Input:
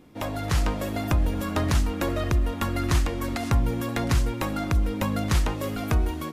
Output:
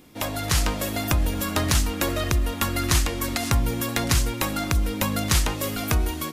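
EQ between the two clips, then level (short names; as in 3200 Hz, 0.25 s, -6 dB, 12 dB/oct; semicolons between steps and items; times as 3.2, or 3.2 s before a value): high shelf 2300 Hz +11 dB; high shelf 12000 Hz +3 dB; 0.0 dB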